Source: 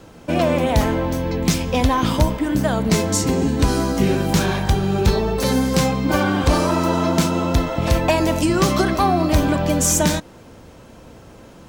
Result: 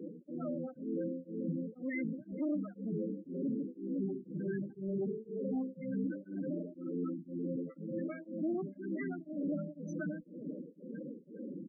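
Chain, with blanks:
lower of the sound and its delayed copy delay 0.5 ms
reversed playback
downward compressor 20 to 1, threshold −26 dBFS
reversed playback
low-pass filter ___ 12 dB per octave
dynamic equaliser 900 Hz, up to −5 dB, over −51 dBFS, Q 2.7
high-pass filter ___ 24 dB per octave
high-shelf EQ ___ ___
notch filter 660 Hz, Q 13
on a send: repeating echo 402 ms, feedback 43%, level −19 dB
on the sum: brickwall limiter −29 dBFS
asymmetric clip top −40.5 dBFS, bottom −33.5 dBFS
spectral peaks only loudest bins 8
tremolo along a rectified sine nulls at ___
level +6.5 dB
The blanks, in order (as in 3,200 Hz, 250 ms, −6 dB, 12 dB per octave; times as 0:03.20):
6,100 Hz, 180 Hz, 3,400 Hz, −6.5 dB, 2 Hz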